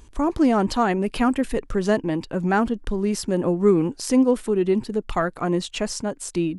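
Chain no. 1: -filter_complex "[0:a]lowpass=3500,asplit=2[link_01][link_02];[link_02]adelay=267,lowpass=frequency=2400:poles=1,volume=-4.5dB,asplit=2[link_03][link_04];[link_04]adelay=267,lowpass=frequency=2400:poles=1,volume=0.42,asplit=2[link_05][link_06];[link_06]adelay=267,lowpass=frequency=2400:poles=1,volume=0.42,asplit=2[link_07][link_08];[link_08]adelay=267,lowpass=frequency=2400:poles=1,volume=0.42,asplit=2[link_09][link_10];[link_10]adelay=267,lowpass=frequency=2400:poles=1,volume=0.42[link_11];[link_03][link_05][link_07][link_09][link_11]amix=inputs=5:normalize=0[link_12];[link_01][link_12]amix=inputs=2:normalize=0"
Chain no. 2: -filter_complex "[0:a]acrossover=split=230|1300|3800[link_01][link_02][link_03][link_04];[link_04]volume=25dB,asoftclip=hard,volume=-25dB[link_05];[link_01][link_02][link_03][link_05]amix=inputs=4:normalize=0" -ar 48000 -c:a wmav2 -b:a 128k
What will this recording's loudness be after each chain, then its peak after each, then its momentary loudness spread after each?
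−21.0, −22.5 LKFS; −4.5, −6.5 dBFS; 7, 7 LU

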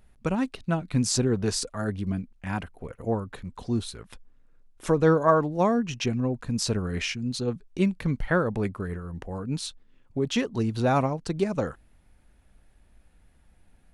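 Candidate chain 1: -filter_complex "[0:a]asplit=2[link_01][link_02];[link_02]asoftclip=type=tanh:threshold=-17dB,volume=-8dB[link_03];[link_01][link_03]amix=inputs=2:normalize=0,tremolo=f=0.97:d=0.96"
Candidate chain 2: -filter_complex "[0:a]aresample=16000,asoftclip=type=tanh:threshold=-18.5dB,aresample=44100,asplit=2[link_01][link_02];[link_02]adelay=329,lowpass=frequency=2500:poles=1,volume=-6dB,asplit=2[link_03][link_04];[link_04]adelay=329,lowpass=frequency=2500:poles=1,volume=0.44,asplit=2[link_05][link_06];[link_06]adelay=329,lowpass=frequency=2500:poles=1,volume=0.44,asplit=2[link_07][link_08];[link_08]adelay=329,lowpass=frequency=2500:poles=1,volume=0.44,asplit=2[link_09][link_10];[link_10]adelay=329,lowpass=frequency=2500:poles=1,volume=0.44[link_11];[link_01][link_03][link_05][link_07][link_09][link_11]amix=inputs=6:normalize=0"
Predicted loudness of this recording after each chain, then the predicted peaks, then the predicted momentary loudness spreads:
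−27.5, −28.5 LKFS; −7.0, −15.0 dBFS; 18, 12 LU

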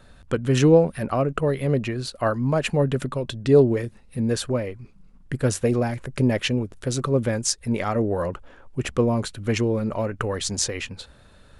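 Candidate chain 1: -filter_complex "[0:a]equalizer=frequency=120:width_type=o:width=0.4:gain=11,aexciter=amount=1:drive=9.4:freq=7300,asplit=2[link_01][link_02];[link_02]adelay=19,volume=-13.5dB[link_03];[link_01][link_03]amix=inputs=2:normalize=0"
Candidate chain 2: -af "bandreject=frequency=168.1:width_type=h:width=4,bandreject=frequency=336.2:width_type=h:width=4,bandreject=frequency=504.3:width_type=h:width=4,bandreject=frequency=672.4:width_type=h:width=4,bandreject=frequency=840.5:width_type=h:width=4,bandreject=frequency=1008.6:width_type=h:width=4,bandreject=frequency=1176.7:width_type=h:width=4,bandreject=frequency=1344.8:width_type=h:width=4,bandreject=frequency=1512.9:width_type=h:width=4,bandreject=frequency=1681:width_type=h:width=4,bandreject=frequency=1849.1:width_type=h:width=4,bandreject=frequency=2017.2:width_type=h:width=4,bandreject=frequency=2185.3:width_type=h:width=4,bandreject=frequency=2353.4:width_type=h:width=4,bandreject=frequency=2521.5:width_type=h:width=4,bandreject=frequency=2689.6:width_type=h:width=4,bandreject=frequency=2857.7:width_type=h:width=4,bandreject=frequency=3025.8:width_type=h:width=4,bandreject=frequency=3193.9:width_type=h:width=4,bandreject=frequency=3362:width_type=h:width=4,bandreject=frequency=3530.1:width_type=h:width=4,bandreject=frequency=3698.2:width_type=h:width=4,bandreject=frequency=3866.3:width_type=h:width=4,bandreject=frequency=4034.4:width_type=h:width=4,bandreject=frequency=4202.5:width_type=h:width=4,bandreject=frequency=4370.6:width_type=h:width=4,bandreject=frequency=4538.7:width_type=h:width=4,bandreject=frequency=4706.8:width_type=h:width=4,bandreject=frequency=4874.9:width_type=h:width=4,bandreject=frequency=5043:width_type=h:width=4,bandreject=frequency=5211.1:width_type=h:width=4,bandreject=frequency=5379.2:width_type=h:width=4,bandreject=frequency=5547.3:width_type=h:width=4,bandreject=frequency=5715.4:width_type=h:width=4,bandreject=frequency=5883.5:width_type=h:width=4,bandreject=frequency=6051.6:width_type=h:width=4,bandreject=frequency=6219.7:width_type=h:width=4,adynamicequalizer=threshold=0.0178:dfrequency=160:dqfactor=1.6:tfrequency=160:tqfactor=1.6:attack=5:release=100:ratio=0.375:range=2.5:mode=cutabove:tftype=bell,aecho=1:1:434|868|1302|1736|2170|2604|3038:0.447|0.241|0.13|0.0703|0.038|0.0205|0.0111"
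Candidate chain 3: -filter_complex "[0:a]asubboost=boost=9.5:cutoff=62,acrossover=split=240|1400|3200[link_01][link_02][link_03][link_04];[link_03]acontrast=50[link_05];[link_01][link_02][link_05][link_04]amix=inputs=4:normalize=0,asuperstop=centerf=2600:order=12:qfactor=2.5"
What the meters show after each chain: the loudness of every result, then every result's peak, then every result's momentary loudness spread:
−20.0, −23.5, −24.0 LKFS; −2.5, −4.0, −3.5 dBFS; 11, 10, 11 LU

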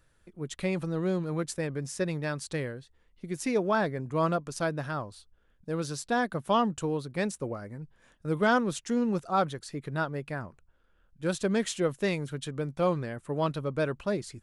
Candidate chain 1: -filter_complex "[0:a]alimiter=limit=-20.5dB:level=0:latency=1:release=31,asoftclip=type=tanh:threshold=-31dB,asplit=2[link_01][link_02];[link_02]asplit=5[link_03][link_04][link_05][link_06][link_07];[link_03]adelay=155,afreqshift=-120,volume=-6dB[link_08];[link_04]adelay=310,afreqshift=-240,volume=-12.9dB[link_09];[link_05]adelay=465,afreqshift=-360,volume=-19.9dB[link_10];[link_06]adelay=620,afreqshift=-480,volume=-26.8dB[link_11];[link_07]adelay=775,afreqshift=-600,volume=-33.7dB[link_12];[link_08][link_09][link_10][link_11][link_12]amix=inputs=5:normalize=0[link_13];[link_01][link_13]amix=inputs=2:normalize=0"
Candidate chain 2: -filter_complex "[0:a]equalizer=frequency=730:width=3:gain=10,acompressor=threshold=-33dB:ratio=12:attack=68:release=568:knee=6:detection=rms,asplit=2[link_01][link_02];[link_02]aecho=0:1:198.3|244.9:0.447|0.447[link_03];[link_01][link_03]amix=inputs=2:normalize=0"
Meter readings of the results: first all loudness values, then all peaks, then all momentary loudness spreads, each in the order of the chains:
−36.5, −37.0 LKFS; −24.5, −20.5 dBFS; 8, 7 LU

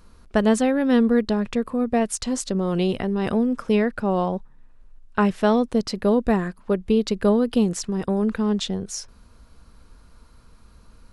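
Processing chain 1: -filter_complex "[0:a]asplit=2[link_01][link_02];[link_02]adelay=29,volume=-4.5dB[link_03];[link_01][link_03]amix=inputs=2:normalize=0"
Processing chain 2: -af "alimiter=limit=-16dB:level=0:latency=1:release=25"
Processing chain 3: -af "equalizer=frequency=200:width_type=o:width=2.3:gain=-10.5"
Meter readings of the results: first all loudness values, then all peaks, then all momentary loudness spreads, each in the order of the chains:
−21.0, −26.0, −28.5 LKFS; −4.0, −16.0, −11.0 dBFS; 8, 5, 7 LU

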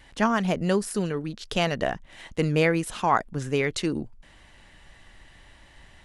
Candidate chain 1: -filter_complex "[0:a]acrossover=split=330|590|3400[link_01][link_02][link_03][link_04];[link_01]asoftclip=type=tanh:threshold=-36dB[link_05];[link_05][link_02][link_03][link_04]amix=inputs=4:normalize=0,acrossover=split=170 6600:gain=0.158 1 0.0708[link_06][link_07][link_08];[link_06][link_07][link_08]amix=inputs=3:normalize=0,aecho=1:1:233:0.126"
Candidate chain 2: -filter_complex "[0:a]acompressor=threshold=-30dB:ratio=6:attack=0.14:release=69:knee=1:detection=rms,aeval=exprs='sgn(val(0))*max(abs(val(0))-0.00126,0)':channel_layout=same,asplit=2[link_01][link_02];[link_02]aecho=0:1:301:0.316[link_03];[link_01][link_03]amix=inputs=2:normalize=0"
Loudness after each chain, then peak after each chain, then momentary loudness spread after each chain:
−28.5, −38.0 LKFS; −8.5, −25.0 dBFS; 11, 19 LU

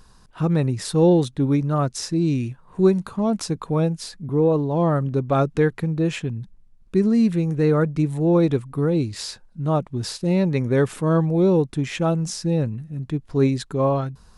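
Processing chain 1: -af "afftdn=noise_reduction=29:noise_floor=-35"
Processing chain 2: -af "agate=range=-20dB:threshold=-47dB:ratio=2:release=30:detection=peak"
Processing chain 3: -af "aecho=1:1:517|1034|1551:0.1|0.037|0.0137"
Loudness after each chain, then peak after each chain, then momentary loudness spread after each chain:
−21.5, −21.5, −21.5 LKFS; −5.5, −6.0, −5.5 dBFS; 9, 9, 10 LU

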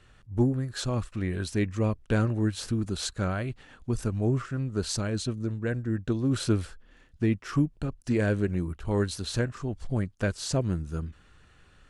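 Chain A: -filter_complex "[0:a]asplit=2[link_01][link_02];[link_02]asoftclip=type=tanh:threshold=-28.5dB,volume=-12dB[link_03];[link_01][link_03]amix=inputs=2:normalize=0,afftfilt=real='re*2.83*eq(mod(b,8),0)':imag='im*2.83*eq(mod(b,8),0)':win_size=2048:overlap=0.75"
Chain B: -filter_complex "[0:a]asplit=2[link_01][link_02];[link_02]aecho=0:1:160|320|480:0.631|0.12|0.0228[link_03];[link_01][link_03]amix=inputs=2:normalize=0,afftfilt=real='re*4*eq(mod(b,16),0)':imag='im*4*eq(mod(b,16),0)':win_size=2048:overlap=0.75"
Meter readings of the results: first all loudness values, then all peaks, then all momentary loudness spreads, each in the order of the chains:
−33.0, −32.0 LKFS; −16.0, −14.5 dBFS; 10, 12 LU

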